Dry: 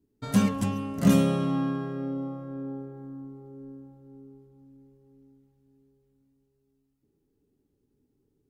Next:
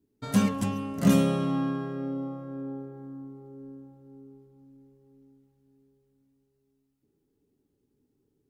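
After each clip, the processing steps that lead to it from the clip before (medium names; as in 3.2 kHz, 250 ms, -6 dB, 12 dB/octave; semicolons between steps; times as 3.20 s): bass shelf 75 Hz -7 dB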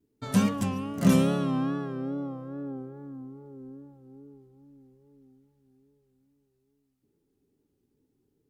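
vibrato 2.4 Hz 76 cents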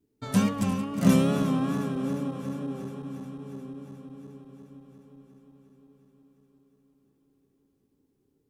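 backward echo that repeats 178 ms, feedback 84%, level -13 dB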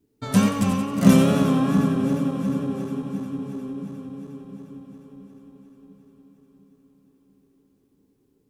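two-band feedback delay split 310 Hz, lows 692 ms, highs 90 ms, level -9 dB; trim +5 dB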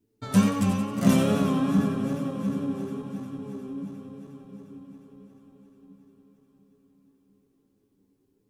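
flange 0.92 Hz, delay 8.6 ms, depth 2.2 ms, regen +49%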